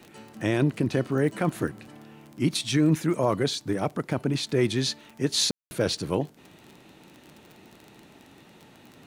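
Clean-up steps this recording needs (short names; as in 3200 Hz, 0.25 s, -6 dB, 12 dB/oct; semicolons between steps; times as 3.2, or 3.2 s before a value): de-click; room tone fill 5.51–5.71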